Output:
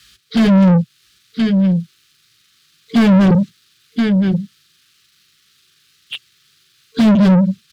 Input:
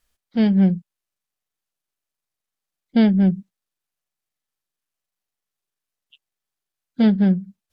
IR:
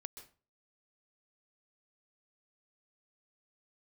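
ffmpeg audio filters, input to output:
-filter_complex "[0:a]equalizer=frequency=125:width_type=o:width=1:gain=9,equalizer=frequency=250:width_type=o:width=1:gain=-7,equalizer=frequency=500:width_type=o:width=1:gain=-11,equalizer=frequency=1000:width_type=o:width=1:gain=-11,equalizer=frequency=2000:width_type=o:width=1:gain=-5,equalizer=frequency=4000:width_type=o:width=1:gain=7,afftfilt=real='re*(1-between(b*sr/4096,450,1100))':imag='im*(1-between(b*sr/4096,450,1100))':win_size=4096:overlap=0.75,acrossover=split=120|810|2000[link_01][link_02][link_03][link_04];[link_01]highpass=51[link_05];[link_02]flanger=delay=16:depth=3.2:speed=1.6[link_06];[link_04]acompressor=threshold=-43dB:ratio=6[link_07];[link_05][link_06][link_03][link_07]amix=inputs=4:normalize=0,alimiter=limit=-21dB:level=0:latency=1:release=335,aecho=1:1:1023:0.141,dynaudnorm=framelen=100:gausssize=11:maxgain=6.5dB,asplit=2[link_08][link_09];[link_09]highpass=frequency=720:poles=1,volume=36dB,asoftclip=type=tanh:threshold=-13dB[link_10];[link_08][link_10]amix=inputs=2:normalize=0,lowpass=frequency=1000:poles=1,volume=-6dB,volume=9dB"

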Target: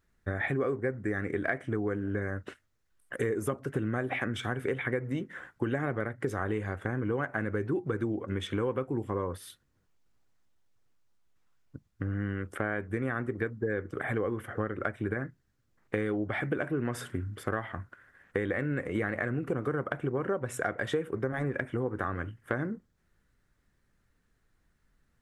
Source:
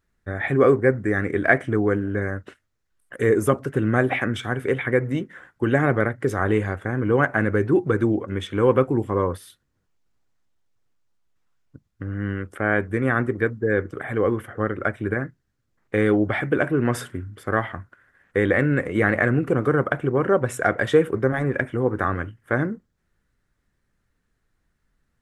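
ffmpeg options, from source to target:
ffmpeg -i in.wav -af "acompressor=threshold=-28dB:ratio=6" out.wav

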